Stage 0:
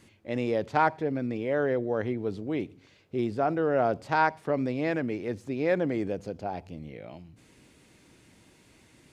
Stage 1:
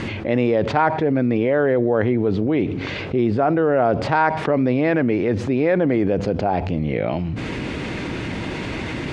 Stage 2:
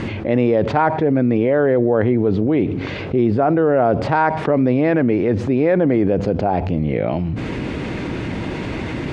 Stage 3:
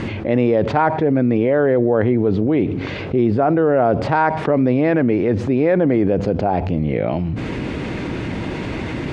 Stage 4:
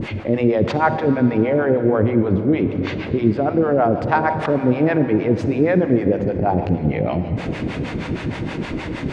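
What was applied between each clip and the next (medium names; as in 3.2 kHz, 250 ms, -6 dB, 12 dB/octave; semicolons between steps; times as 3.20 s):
low-pass 3 kHz 12 dB/octave; level flattener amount 70%; trim +5 dB
tilt shelf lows +3 dB, about 1.4 kHz
no audible change
harmonic tremolo 6.4 Hz, depth 100%, crossover 550 Hz; reverberation RT60 3.9 s, pre-delay 43 ms, DRR 9.5 dB; trim +3.5 dB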